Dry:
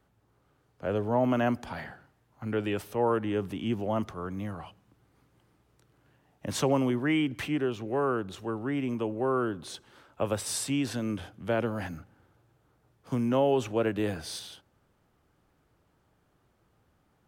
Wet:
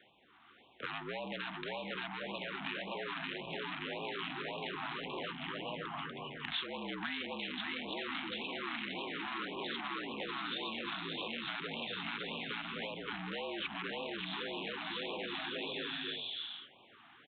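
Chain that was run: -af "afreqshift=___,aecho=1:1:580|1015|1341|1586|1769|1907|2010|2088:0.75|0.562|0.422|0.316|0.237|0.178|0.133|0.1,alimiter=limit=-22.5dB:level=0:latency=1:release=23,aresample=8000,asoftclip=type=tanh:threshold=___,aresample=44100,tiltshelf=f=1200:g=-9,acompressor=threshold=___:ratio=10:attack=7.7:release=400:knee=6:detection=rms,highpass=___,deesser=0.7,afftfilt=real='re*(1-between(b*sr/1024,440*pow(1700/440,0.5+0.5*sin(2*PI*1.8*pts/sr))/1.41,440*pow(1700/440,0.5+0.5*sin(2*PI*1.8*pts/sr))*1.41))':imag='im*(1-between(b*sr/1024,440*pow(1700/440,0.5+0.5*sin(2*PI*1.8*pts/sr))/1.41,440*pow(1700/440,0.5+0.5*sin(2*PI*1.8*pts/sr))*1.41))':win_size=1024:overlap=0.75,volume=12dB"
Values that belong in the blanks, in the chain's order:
-52, -35.5dB, -45dB, 210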